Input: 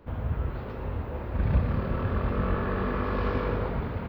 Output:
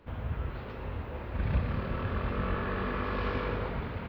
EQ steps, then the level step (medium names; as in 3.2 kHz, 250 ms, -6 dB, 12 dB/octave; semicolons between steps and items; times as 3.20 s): peaking EQ 2.9 kHz +7 dB 2 oct; -5.0 dB